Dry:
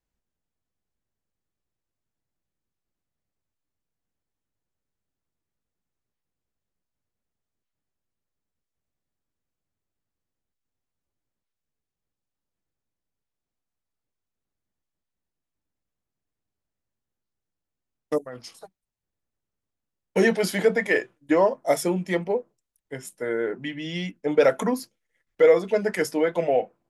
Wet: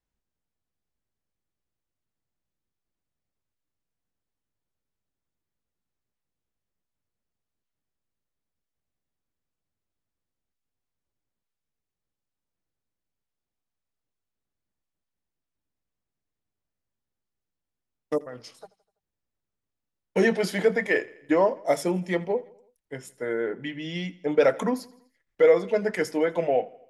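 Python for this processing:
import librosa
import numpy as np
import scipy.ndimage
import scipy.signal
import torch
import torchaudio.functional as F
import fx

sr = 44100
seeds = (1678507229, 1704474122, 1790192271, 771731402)

p1 = fx.high_shelf(x, sr, hz=10000.0, db=-10.5)
p2 = p1 + fx.echo_feedback(p1, sr, ms=83, feedback_pct=54, wet_db=-22, dry=0)
y = p2 * 10.0 ** (-1.5 / 20.0)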